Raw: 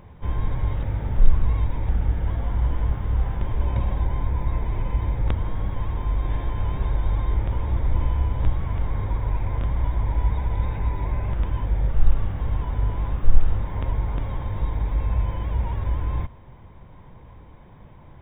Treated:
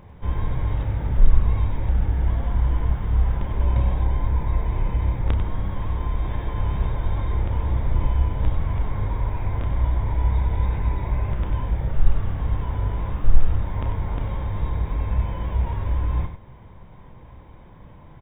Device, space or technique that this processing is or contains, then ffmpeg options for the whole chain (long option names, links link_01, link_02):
slapback doubling: -filter_complex "[0:a]asplit=3[link_01][link_02][link_03];[link_02]adelay=31,volume=-8.5dB[link_04];[link_03]adelay=95,volume=-8dB[link_05];[link_01][link_04][link_05]amix=inputs=3:normalize=0"